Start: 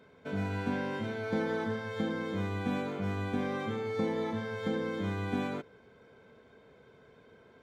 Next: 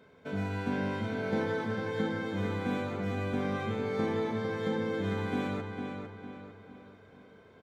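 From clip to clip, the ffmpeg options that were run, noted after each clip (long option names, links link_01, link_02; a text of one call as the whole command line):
ffmpeg -i in.wav -filter_complex "[0:a]asplit=2[link_01][link_02];[link_02]adelay=453,lowpass=frequency=4400:poles=1,volume=-5.5dB,asplit=2[link_03][link_04];[link_04]adelay=453,lowpass=frequency=4400:poles=1,volume=0.45,asplit=2[link_05][link_06];[link_06]adelay=453,lowpass=frequency=4400:poles=1,volume=0.45,asplit=2[link_07][link_08];[link_08]adelay=453,lowpass=frequency=4400:poles=1,volume=0.45,asplit=2[link_09][link_10];[link_10]adelay=453,lowpass=frequency=4400:poles=1,volume=0.45[link_11];[link_01][link_03][link_05][link_07][link_09][link_11]amix=inputs=6:normalize=0" out.wav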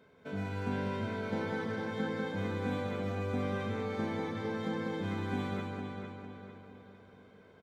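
ffmpeg -i in.wav -af "aecho=1:1:196:0.631,volume=-3.5dB" out.wav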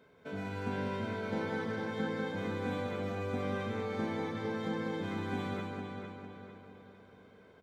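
ffmpeg -i in.wav -af "bandreject=frequency=50:width_type=h:width=6,bandreject=frequency=100:width_type=h:width=6,bandreject=frequency=150:width_type=h:width=6,bandreject=frequency=200:width_type=h:width=6,bandreject=frequency=250:width_type=h:width=6" out.wav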